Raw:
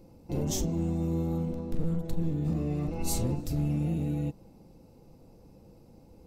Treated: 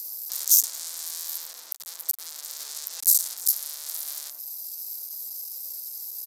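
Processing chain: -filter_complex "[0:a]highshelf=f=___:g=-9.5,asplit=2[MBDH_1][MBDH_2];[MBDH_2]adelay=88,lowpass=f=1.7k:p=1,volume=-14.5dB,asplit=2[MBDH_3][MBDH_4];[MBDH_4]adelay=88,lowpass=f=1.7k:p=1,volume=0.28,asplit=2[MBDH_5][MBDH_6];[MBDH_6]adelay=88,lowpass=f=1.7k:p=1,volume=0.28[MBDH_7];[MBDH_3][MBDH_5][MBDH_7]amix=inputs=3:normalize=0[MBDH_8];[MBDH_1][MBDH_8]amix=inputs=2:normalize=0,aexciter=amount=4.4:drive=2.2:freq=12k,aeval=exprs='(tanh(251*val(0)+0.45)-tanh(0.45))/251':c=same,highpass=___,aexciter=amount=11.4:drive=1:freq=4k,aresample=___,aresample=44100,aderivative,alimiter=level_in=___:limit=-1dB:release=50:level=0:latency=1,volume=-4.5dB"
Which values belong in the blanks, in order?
9k, 570, 32000, 25dB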